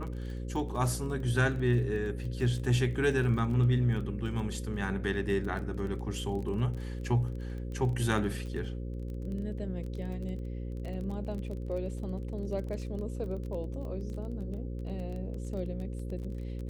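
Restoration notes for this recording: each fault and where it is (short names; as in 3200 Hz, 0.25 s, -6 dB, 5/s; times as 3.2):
buzz 60 Hz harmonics 9 -37 dBFS
crackle 20/s -38 dBFS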